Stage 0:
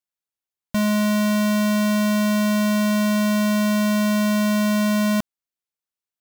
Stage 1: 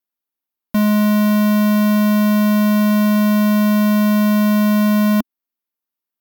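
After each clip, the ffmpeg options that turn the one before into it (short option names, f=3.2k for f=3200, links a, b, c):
-af "equalizer=f=125:t=o:w=1:g=-9,equalizer=f=250:t=o:w=1:g=11,equalizer=f=1k:t=o:w=1:g=4,equalizer=f=8k:t=o:w=1:g=-9,equalizer=f=16k:t=o:w=1:g=11"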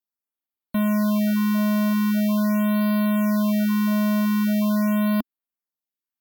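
-af "afftfilt=real='re*(1-between(b*sr/1024,380*pow(7100/380,0.5+0.5*sin(2*PI*0.43*pts/sr))/1.41,380*pow(7100/380,0.5+0.5*sin(2*PI*0.43*pts/sr))*1.41))':imag='im*(1-between(b*sr/1024,380*pow(7100/380,0.5+0.5*sin(2*PI*0.43*pts/sr))/1.41,380*pow(7100/380,0.5+0.5*sin(2*PI*0.43*pts/sr))*1.41))':win_size=1024:overlap=0.75,volume=-6.5dB"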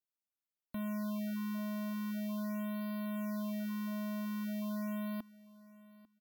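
-af "alimiter=limit=-23.5dB:level=0:latency=1,aecho=1:1:846|1692:0.0944|0.0151,volume=-7.5dB"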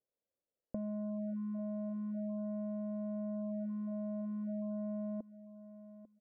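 -af "acompressor=threshold=-43dB:ratio=3,lowpass=f=530:t=q:w=4.9,volume=3.5dB"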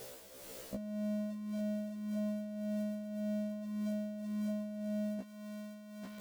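-af "aeval=exprs='val(0)+0.5*0.00596*sgn(val(0))':c=same,tremolo=f=1.8:d=0.58,afftfilt=real='re*1.73*eq(mod(b,3),0)':imag='im*1.73*eq(mod(b,3),0)':win_size=2048:overlap=0.75,volume=8.5dB"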